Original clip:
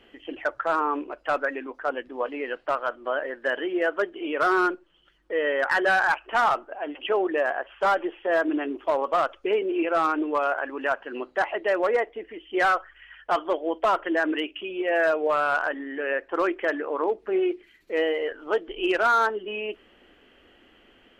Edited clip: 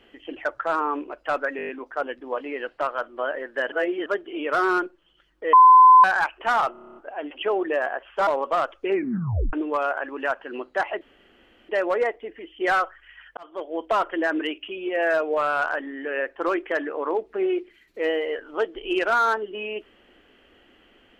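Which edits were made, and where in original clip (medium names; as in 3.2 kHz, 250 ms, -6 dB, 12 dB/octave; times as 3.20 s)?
1.57 s: stutter 0.02 s, 7 plays
3.60–3.94 s: reverse
5.41–5.92 s: bleep 1.02 kHz -7.5 dBFS
6.60 s: stutter 0.03 s, 9 plays
7.91–8.88 s: delete
9.48 s: tape stop 0.66 s
11.62 s: insert room tone 0.68 s
13.30–13.80 s: fade in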